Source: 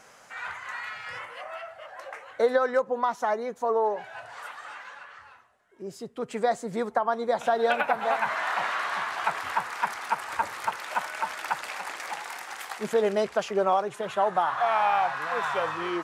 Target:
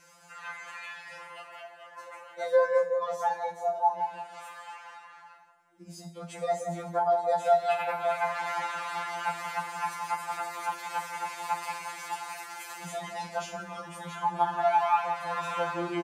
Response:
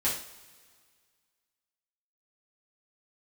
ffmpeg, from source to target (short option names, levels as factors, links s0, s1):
-filter_complex "[0:a]asplit=2[s0][s1];[s1]adelay=175,lowpass=f=810:p=1,volume=0.631,asplit=2[s2][s3];[s3]adelay=175,lowpass=f=810:p=1,volume=0.41,asplit=2[s4][s5];[s5]adelay=175,lowpass=f=810:p=1,volume=0.41,asplit=2[s6][s7];[s7]adelay=175,lowpass=f=810:p=1,volume=0.41,asplit=2[s8][s9];[s9]adelay=175,lowpass=f=810:p=1,volume=0.41[s10];[s0][s2][s4][s6][s8][s10]amix=inputs=6:normalize=0,asplit=2[s11][s12];[1:a]atrim=start_sample=2205,highshelf=f=4600:g=11.5[s13];[s12][s13]afir=irnorm=-1:irlink=0,volume=0.211[s14];[s11][s14]amix=inputs=2:normalize=0,afftfilt=real='re*2.83*eq(mod(b,8),0)':imag='im*2.83*eq(mod(b,8),0)':win_size=2048:overlap=0.75,volume=0.596"